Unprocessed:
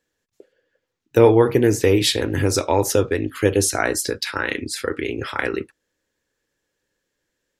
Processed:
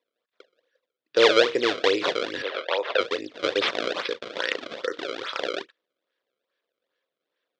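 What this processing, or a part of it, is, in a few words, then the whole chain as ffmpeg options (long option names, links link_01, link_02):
circuit-bent sampling toy: -filter_complex "[0:a]acrusher=samples=28:mix=1:aa=0.000001:lfo=1:lforange=44.8:lforate=2.4,highpass=520,equalizer=frequency=520:width_type=q:width=4:gain=5,equalizer=frequency=830:width_type=q:width=4:gain=-9,equalizer=frequency=3500:width_type=q:width=4:gain=7,lowpass=frequency=5000:width=0.5412,lowpass=frequency=5000:width=1.3066,asettb=1/sr,asplit=3[link_01][link_02][link_03];[link_01]atrim=end=2.424[link_04];[link_02]atrim=start=2.42:end=3.01,asetpts=PTS-STARTPTS,afade=type=in:duration=0.004:curve=qsin,afade=type=out:start_time=0.586:duration=0.004:curve=qsin,acrossover=split=420 4000:gain=0.0708 1 0.0891[link_05][link_06][link_07];[link_05][link_06][link_07]amix=inputs=3:normalize=0[link_08];[link_03]atrim=start=3.006[link_09];[link_04][link_08]acrossfade=duration=0.004:curve1=hsin:curve2=qsin[link_10];[link_10][link_09]acrossfade=duration=0.004:curve1=qsin:curve2=hsin,volume=-2.5dB"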